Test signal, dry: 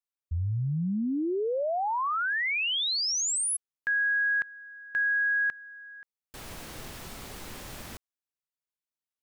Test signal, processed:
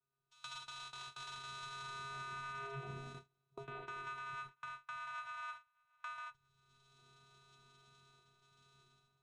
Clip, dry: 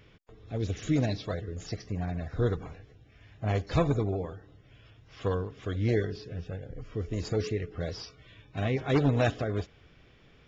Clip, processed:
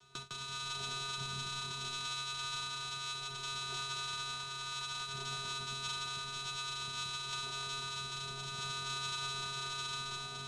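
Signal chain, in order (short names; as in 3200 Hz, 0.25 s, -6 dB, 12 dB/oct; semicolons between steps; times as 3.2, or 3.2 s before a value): reverse delay 0.63 s, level -7 dB; power-law curve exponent 0.35; flange 2 Hz, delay 6.1 ms, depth 1.4 ms, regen -88%; inverted band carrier 3500 Hz; low shelf 460 Hz +8.5 dB; plate-style reverb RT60 1.8 s, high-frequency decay 0.65×, pre-delay 80 ms, DRR -1.5 dB; vocoder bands 4, square 136 Hz; resonator bank B3 major, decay 0.34 s; gate with hold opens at -42 dBFS, closes at -46 dBFS, hold 26 ms, range -33 dB; three-band squash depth 70%; gain +2 dB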